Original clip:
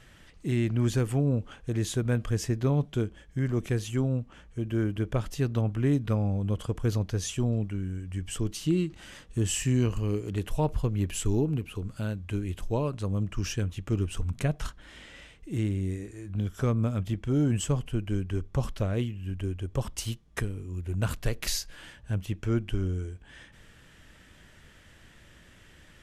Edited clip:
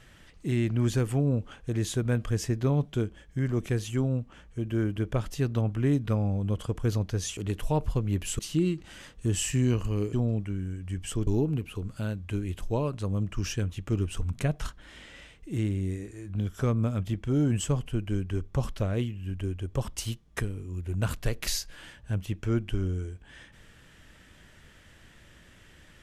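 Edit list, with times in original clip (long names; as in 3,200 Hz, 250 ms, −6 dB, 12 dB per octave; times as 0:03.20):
0:07.37–0:08.51: swap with 0:10.25–0:11.27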